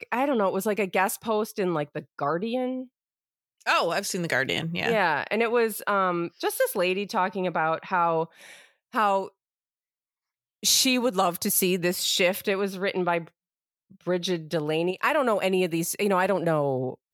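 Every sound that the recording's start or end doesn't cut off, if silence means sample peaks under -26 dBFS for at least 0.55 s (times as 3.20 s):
3.67–8.23 s
8.95–9.23 s
10.64–13.18 s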